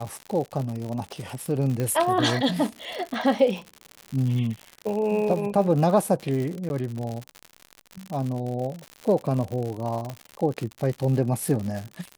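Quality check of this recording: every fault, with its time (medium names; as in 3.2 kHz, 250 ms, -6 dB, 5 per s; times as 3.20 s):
crackle 98 per s -29 dBFS
1.80 s: pop -15 dBFS
6.69–6.70 s: dropout
10.10 s: pop -20 dBFS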